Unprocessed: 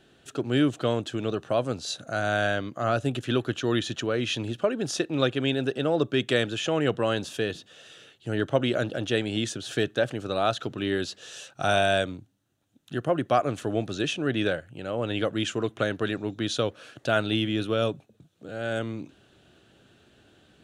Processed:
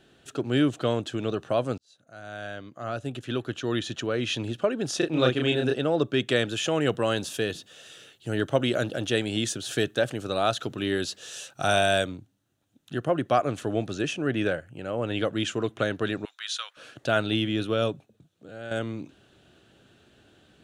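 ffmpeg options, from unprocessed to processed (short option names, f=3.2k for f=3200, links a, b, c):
-filter_complex "[0:a]asettb=1/sr,asplit=3[a][b][c];[a]atrim=end=4.984[d];[b]atrim=start=4.98:end=5.76,asetpts=PTS-STARTPTS,afade=t=in:d=0.004:c=qsin,afade=t=out:st=0.776:d=0.004:c=qsin,asplit=2[e][f];[f]adelay=32,volume=-2dB[g];[e][g]amix=inputs=2:normalize=0,atrim=end_sample=34398[h];[c]atrim=start=5.756[i];[d][h]acrossfade=d=0.004:c1=hsin:c2=qsin[j];[j][i]acrossfade=d=0.004:c1=qsin:c2=hsin,asettb=1/sr,asplit=3[k][l][m];[k]atrim=end=6.494[n];[l]atrim=start=6.49:end=12.07,asetpts=PTS-STARTPTS,afade=t=in:d=0.004:c=qsin,afade=t=out:st=5.576:d=0.004:c=qsin,highshelf=f=8.1k:g=11.5[o];[m]atrim=start=12.066[p];[n][o]acrossfade=d=0.004:c1=hsin:c2=qsin[q];[q][p]acrossfade=d=0.004:c1=qsin:c2=hsin,asettb=1/sr,asplit=3[r][s][t];[r]atrim=end=13.934[u];[s]atrim=start=13.93:end=15.12,asetpts=PTS-STARTPTS,afade=t=in:d=0.004:c=qsin,afade=t=out:st=1.186:d=0.004:c=qsin,equalizer=f=3.7k:w=3.5:g=-8[v];[t]atrim=start=15.116[w];[u][v]acrossfade=d=0.004:c1=hsin:c2=qsin[x];[x][w]acrossfade=d=0.004:c1=qsin:c2=hsin,asettb=1/sr,asplit=3[y][z][aa];[y]atrim=end=16.254[ab];[z]atrim=start=16.25:end=16.77,asetpts=PTS-STARTPTS,afade=t=in:d=0.004:c=qsin,afade=t=out:st=0.516:d=0.004:c=qsin,highpass=f=1.2k:w=0.5412,highpass=f=1.2k:w=1.3066[ac];[aa]atrim=start=16.766[ad];[ab][ac]acrossfade=d=0.004:c1=hsin:c2=qsin[ae];[ae][ad]acrossfade=d=0.004:c1=qsin:c2=hsin,asplit=3[af][ag][ah];[af]atrim=end=1.78,asetpts=PTS-STARTPTS,afade=t=out:st=1.776:d=0.004:c=hsin[ai];[ag]atrim=start=1.78:end=18.71,asetpts=PTS-STARTPTS,afade=t=in:d=2.58,afade=t=out:st=16.05:d=0.88:silence=0.398107[aj];[ah]atrim=start=18.71,asetpts=PTS-STARTPTS,afade=t=in:d=0.004:c=hsin:silence=0.398107[ak];[ai][aj][ak]concat=n=3:v=0:a=1"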